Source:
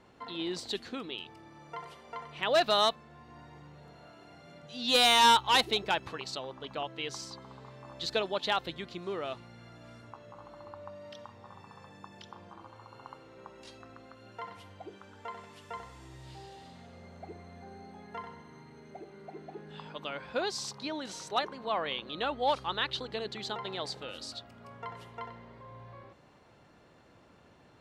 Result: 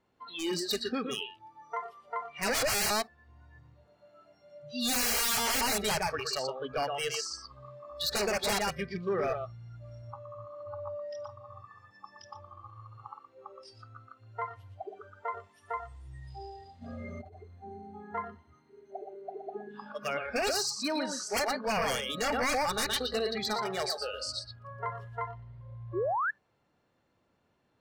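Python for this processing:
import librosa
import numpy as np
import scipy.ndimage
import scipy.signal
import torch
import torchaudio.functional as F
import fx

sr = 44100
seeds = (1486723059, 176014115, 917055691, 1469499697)

p1 = x + fx.echo_single(x, sr, ms=119, db=-6.0, dry=0)
p2 = 10.0 ** (-30.0 / 20.0) * (np.abs((p1 / 10.0 ** (-30.0 / 20.0) + 3.0) % 4.0 - 2.0) - 1.0)
p3 = fx.over_compress(p2, sr, threshold_db=-51.0, ratio=-1.0, at=(16.81, 17.37), fade=0.02)
p4 = fx.spec_paint(p3, sr, seeds[0], shape='rise', start_s=25.93, length_s=0.38, low_hz=310.0, high_hz=1800.0, level_db=-36.0)
p5 = fx.noise_reduce_blind(p4, sr, reduce_db=21)
y = p5 * librosa.db_to_amplitude(6.5)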